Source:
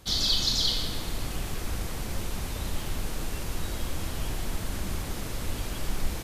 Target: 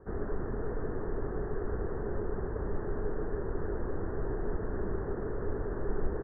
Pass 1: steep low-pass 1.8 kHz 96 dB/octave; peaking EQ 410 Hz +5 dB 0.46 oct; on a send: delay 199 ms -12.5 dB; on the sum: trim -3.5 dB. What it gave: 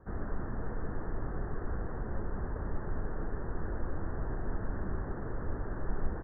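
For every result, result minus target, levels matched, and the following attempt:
echo 147 ms early; 500 Hz band -5.0 dB
steep low-pass 1.8 kHz 96 dB/octave; peaking EQ 410 Hz +5 dB 0.46 oct; on a send: delay 346 ms -12.5 dB; on the sum: trim -3.5 dB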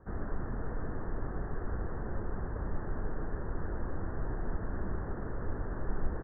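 500 Hz band -5.0 dB
steep low-pass 1.8 kHz 96 dB/octave; peaking EQ 410 Hz +16.5 dB 0.46 oct; on a send: delay 346 ms -12.5 dB; on the sum: trim -3.5 dB

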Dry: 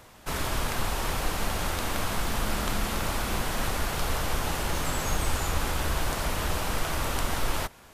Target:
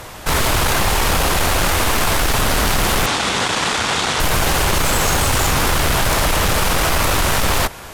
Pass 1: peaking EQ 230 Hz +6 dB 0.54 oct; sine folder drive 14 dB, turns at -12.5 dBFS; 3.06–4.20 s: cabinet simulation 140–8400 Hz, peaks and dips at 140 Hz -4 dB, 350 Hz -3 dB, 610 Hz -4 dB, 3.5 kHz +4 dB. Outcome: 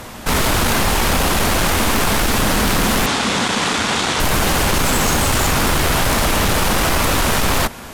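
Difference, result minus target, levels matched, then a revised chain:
250 Hz band +4.0 dB
peaking EQ 230 Hz -5 dB 0.54 oct; sine folder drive 14 dB, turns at -12.5 dBFS; 3.06–4.20 s: cabinet simulation 140–8400 Hz, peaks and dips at 140 Hz -4 dB, 350 Hz -3 dB, 610 Hz -4 dB, 3.5 kHz +4 dB

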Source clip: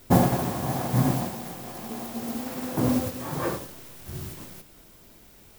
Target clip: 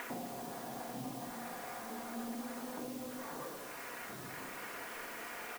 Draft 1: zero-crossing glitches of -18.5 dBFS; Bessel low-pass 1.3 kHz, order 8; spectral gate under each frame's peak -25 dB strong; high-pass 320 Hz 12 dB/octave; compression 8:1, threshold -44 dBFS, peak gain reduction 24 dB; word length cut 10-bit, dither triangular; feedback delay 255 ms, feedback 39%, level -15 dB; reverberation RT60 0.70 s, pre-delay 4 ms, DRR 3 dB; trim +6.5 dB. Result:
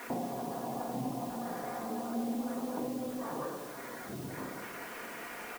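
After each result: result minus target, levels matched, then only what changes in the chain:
compression: peak gain reduction -7 dB; zero-crossing glitches: distortion -9 dB
change: compression 8:1, threshold -52 dBFS, peak gain reduction 31 dB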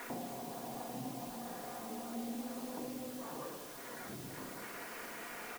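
zero-crossing glitches: distortion -9 dB
change: zero-crossing glitches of -8 dBFS

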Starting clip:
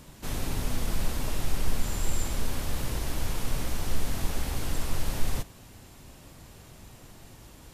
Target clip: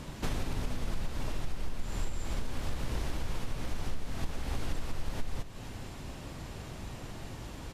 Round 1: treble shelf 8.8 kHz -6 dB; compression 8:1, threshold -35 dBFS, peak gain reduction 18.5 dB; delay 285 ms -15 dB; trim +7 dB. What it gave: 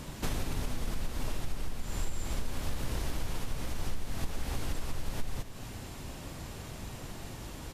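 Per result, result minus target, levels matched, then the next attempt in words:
echo 194 ms early; 8 kHz band +3.5 dB
treble shelf 8.8 kHz -6 dB; compression 8:1, threshold -35 dBFS, peak gain reduction 18.5 dB; delay 479 ms -15 dB; trim +7 dB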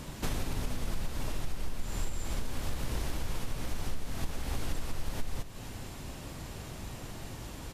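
8 kHz band +3.5 dB
treble shelf 8.8 kHz -16 dB; compression 8:1, threshold -35 dBFS, peak gain reduction 18.5 dB; delay 479 ms -15 dB; trim +7 dB

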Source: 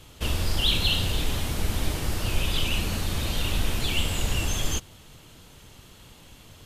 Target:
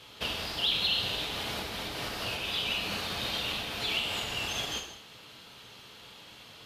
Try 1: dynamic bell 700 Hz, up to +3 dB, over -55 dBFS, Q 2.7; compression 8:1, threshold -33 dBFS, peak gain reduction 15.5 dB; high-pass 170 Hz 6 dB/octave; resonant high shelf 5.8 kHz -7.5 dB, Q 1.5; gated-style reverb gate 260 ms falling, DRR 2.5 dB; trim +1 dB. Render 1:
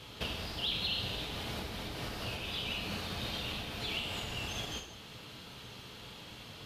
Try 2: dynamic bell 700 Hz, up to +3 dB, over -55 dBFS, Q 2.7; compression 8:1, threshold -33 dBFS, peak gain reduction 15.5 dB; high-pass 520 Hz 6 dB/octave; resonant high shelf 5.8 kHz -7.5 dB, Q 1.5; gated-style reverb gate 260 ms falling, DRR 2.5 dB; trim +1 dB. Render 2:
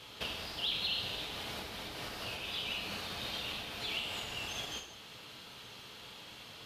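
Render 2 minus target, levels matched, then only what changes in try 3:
compression: peak gain reduction +6.5 dB
change: compression 8:1, threshold -25.5 dBFS, peak gain reduction 9 dB

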